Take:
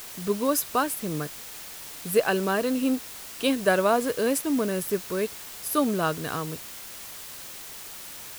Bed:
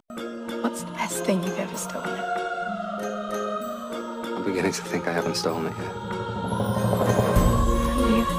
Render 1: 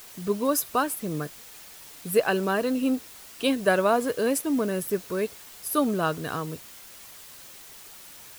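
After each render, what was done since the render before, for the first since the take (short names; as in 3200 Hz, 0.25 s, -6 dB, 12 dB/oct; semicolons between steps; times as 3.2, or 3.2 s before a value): denoiser 6 dB, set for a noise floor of -41 dBFS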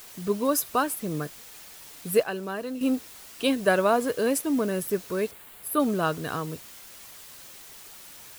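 2.23–2.81 gain -7.5 dB; 5.31–5.8 bell 5700 Hz -14 dB 0.85 oct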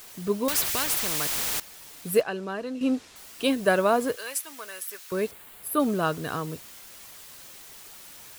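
0.48–1.6 spectral compressor 4:1; 2.21–3.16 LPF 6800 Hz; 4.16–5.12 HPF 1300 Hz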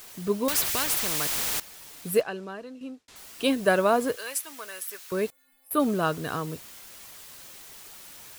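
2.05–3.08 fade out; 5.3–5.71 metallic resonator 260 Hz, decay 0.64 s, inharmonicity 0.008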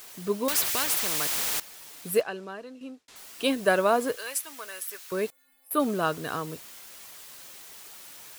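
low shelf 170 Hz -8.5 dB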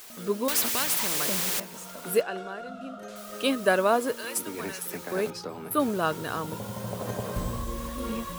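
add bed -12 dB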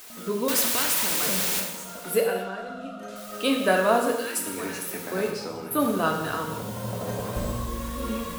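non-linear reverb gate 0.31 s falling, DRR 1 dB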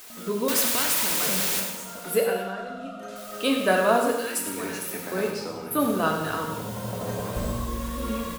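echo 99 ms -11 dB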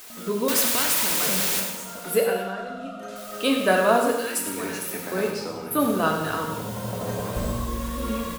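gain +1.5 dB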